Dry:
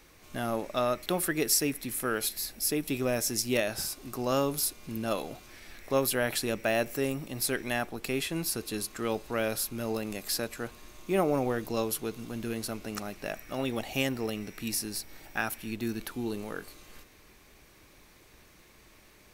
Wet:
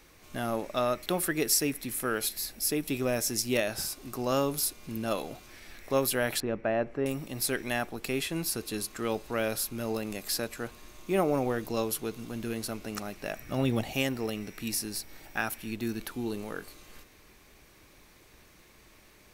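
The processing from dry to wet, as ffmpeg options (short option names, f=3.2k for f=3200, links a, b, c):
-filter_complex "[0:a]asettb=1/sr,asplit=3[a][b][c];[a]atrim=end=6.404[d];[b]atrim=start=6.4:end=7.06,asetpts=PTS-STARTPTS,afade=t=in:d=0.004:c=qsin,afade=t=out:st=0.656:d=0.004:c=qsin,lowpass=1.5k[e];[c]atrim=start=7.056[f];[d][e]acrossfade=d=0.004:c1=hsin:c2=qsin[g];[g][f]acrossfade=d=0.004:c1=qsin:c2=hsin,asettb=1/sr,asplit=3[h][i][j];[h]atrim=end=13.394[k];[i]atrim=start=13.39:end=13.92,asetpts=PTS-STARTPTS,afade=t=in:d=0.004:c=qsin,afade=t=out:st=0.526:d=0.004:c=qsin,equalizer=f=110:t=o:w=2.3:g=10.5[l];[j]atrim=start=13.916[m];[k][l]acrossfade=d=0.004:c1=hsin:c2=qsin[n];[n][m]acrossfade=d=0.004:c1=qsin:c2=hsin"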